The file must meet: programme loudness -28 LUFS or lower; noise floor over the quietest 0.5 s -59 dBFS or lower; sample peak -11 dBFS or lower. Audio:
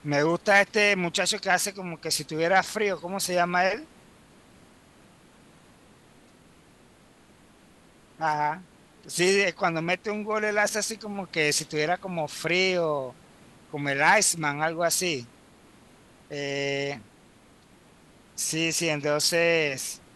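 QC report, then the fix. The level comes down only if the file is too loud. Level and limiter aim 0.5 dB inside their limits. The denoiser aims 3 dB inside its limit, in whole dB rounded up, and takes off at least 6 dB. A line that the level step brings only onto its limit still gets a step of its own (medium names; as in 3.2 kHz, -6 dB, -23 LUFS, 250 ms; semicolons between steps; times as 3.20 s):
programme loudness -25.0 LUFS: fail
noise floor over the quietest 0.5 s -56 dBFS: fail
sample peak -7.5 dBFS: fail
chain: trim -3.5 dB; peak limiter -11.5 dBFS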